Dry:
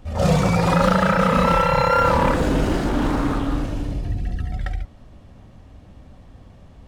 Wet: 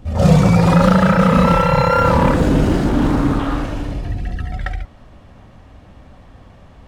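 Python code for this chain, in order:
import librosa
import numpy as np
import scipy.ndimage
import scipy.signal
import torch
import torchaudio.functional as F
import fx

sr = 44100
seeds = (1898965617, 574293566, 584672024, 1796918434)

y = fx.peak_eq(x, sr, hz=fx.steps((0.0, 140.0), (3.39, 1400.0)), db=6.5, octaves=2.7)
y = y * 10.0 ** (1.5 / 20.0)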